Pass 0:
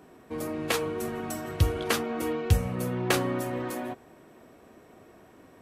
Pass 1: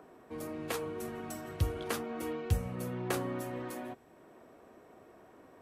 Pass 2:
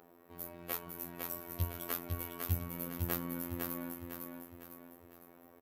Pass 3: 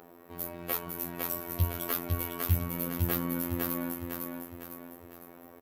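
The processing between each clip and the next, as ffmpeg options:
-filter_complex "[0:a]acrossover=split=330|1600|6900[a][b][c][d];[b]acompressor=mode=upward:threshold=-43dB:ratio=2.5[e];[c]alimiter=limit=-24dB:level=0:latency=1:release=296[f];[a][e][f][d]amix=inputs=4:normalize=0,volume=-7.5dB"
-af "aecho=1:1:504|1008|1512|2016|2520:0.631|0.271|0.117|0.0502|0.0216,afftfilt=real='hypot(re,im)*cos(PI*b)':imag='0':win_size=2048:overlap=0.75,aexciter=amount=12.1:drive=4.1:freq=12k,volume=-2.5dB"
-af "aeval=exprs='0.211*sin(PI/2*1.58*val(0)/0.211)':c=same"

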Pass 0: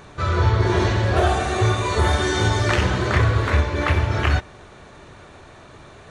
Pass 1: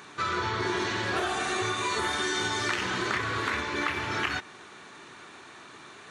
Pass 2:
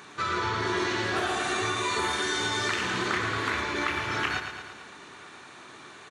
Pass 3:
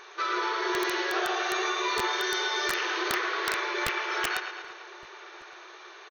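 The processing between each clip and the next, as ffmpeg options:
-af "highpass=310,equalizer=f=580:w=1.6:g=-12.5,acompressor=threshold=-27dB:ratio=6,volume=1.5dB"
-af "aecho=1:1:112|224|336|448|560|672|784|896:0.398|0.239|0.143|0.086|0.0516|0.031|0.0186|0.0111"
-filter_complex "[0:a]afftfilt=real='re*between(b*sr/4096,330,6600)':imag='im*between(b*sr/4096,330,6600)':win_size=4096:overlap=0.75,aeval=exprs='(mod(7.94*val(0)+1,2)-1)/7.94':c=same,asplit=2[a][b];[b]adelay=1166,volume=-19dB,highshelf=f=4k:g=-26.2[c];[a][c]amix=inputs=2:normalize=0"

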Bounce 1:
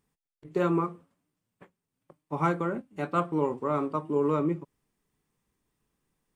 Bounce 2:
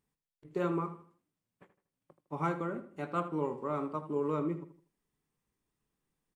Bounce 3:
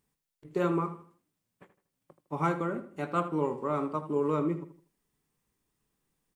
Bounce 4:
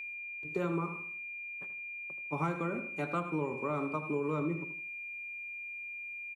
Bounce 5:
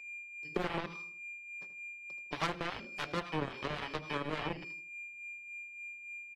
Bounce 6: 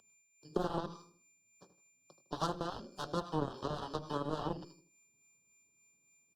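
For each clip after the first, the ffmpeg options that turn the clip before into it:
-filter_complex "[0:a]asplit=2[a][b];[b]adelay=79,lowpass=f=4k:p=1,volume=-12dB,asplit=2[c][d];[d]adelay=79,lowpass=f=4k:p=1,volume=0.35,asplit=2[e][f];[f]adelay=79,lowpass=f=4k:p=1,volume=0.35,asplit=2[g][h];[h]adelay=79,lowpass=f=4k:p=1,volume=0.35[i];[a][c][e][g][i]amix=inputs=5:normalize=0,volume=-6.5dB"
-af "highshelf=f=5.5k:g=4,volume=4dB"
-filter_complex "[0:a]aeval=exprs='val(0)+0.0112*sin(2*PI*2400*n/s)':c=same,aecho=1:1:101:0.119,acrossover=split=150[a][b];[b]acompressor=threshold=-31dB:ratio=5[c];[a][c]amix=inputs=2:normalize=0"
-filter_complex "[0:a]highpass=99,aeval=exprs='0.1*(cos(1*acos(clip(val(0)/0.1,-1,1)))-cos(1*PI/2))+0.00708*(cos(3*acos(clip(val(0)/0.1,-1,1)))-cos(3*PI/2))+0.0224*(cos(7*acos(clip(val(0)/0.1,-1,1)))-cos(7*PI/2))':c=same,acrossover=split=680[a][b];[a]aeval=exprs='val(0)*(1-0.5/2+0.5/2*cos(2*PI*3.5*n/s))':c=same[c];[b]aeval=exprs='val(0)*(1-0.5/2-0.5/2*cos(2*PI*3.5*n/s))':c=same[d];[c][d]amix=inputs=2:normalize=0,volume=2dB"
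-af "asuperstop=centerf=2200:order=4:qfactor=0.91,volume=1dB" -ar 48000 -c:a libopus -b:a 64k

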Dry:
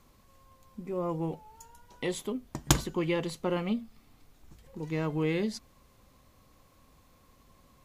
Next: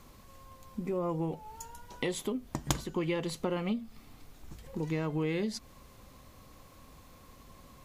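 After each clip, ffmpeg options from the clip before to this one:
-af "acompressor=threshold=-38dB:ratio=3,volume=6.5dB"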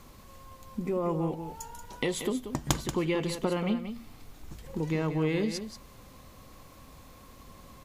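-af "aecho=1:1:183:0.335,volume=3dB"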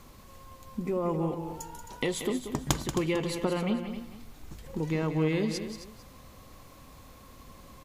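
-af "aecho=1:1:265:0.266"

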